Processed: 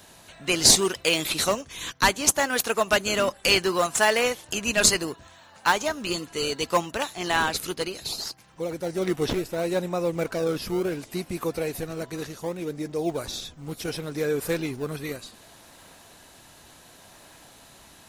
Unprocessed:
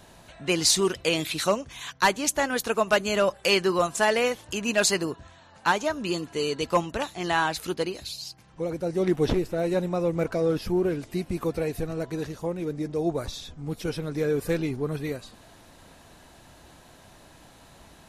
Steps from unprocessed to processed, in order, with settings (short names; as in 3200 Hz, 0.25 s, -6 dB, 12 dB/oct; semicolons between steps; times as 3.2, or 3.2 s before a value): tilt +2 dB/oct; in parallel at -11.5 dB: decimation with a swept rate 30×, swing 160% 0.68 Hz